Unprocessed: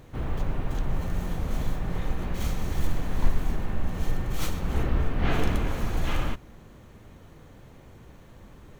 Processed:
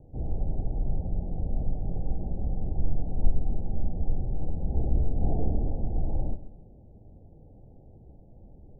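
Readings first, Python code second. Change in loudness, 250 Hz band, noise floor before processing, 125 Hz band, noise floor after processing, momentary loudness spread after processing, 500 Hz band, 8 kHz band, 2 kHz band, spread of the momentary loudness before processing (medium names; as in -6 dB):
-1.5 dB, -3.5 dB, -50 dBFS, -1.0 dB, -52 dBFS, 5 LU, -4.5 dB, no reading, under -40 dB, 23 LU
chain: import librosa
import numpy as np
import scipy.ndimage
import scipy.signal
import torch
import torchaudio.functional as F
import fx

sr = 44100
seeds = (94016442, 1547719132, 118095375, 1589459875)

y = scipy.signal.sosfilt(scipy.signal.butter(16, 830.0, 'lowpass', fs=sr, output='sos'), x)
y = fx.low_shelf(y, sr, hz=130.0, db=5.5)
y = fx.echo_feedback(y, sr, ms=134, feedback_pct=30, wet_db=-14)
y = y * 10.0 ** (-5.0 / 20.0)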